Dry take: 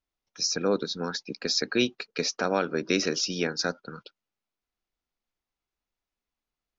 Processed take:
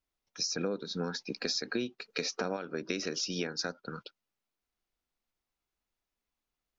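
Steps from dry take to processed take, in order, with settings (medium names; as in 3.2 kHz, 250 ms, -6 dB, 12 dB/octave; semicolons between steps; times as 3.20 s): 0.58–2.57 s: harmonic-percussive split harmonic +8 dB; compression 10:1, threshold -30 dBFS, peak gain reduction 17.5 dB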